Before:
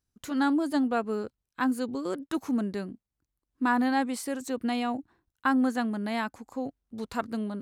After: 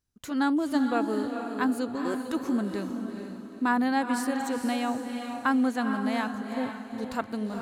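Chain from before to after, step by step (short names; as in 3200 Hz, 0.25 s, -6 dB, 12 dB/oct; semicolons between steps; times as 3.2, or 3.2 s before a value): diffused feedback echo 0.451 s, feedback 41%, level -6 dB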